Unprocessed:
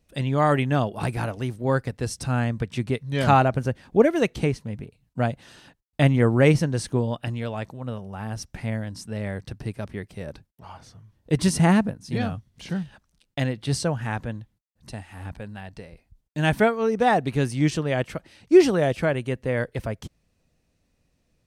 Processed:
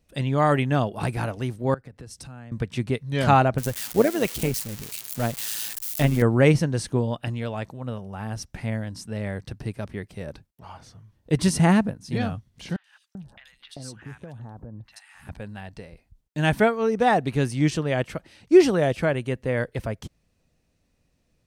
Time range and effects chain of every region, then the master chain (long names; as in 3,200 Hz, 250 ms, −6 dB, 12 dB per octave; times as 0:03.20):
0:01.74–0:02.52: downward compressor 10 to 1, threshold −37 dBFS + multiband upward and downward expander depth 40%
0:03.58–0:06.22: spike at every zero crossing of −19.5 dBFS + amplitude modulation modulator 110 Hz, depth 35%
0:12.76–0:15.29: downward compressor 16 to 1, threshold −34 dBFS + three-band delay without the direct sound mids, highs, lows 80/390 ms, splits 1,100/3,400 Hz
whole clip: no processing